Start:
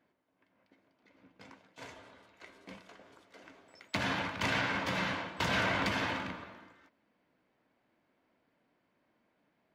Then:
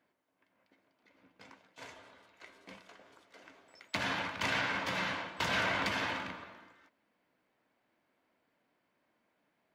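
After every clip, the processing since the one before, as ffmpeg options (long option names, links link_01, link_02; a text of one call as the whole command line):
ffmpeg -i in.wav -af "lowshelf=frequency=420:gain=-6" out.wav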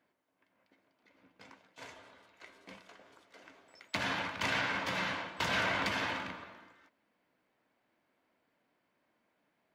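ffmpeg -i in.wav -af anull out.wav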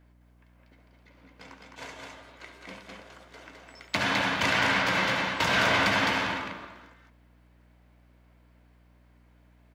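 ffmpeg -i in.wav -af "aecho=1:1:69.97|209.9:0.316|0.708,aeval=exprs='val(0)+0.000562*(sin(2*PI*60*n/s)+sin(2*PI*2*60*n/s)/2+sin(2*PI*3*60*n/s)/3+sin(2*PI*4*60*n/s)/4+sin(2*PI*5*60*n/s)/5)':channel_layout=same,volume=7dB" out.wav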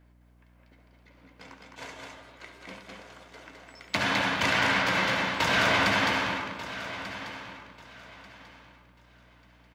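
ffmpeg -i in.wav -af "aecho=1:1:1190|2380|3570:0.211|0.0528|0.0132" out.wav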